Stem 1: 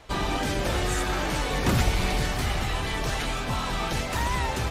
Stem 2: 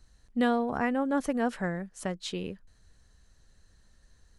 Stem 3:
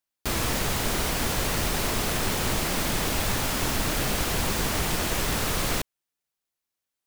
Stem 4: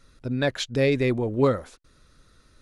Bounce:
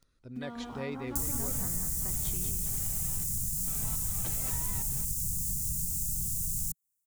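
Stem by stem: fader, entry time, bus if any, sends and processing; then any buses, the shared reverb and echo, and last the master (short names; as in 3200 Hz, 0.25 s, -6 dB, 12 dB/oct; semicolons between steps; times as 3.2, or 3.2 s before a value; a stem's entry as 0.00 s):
3.64 s -24 dB -> 4.08 s -11.5 dB, 0.35 s, bus A, no send, no echo send, low shelf 290 Hz +5.5 dB; step gate ".xx..xxxx.." 104 bpm -12 dB
-9.0 dB, 0.00 s, bus A, no send, echo send -10.5 dB, comb 0.9 ms, depth 60%
+1.0 dB, 0.90 s, bus B, no send, no echo send, elliptic band-stop 160–7200 Hz, stop band 60 dB; high shelf 4400 Hz +7.5 dB
-17.0 dB, 0.00 s, bus B, no send, no echo send, dry
bus A: 0.0 dB, sample gate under -52.5 dBFS; compressor 12:1, threshold -39 dBFS, peak gain reduction 10.5 dB
bus B: 0.0 dB, compressor, threshold -29 dBFS, peak gain reduction 8.5 dB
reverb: off
echo: feedback echo 0.193 s, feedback 43%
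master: dry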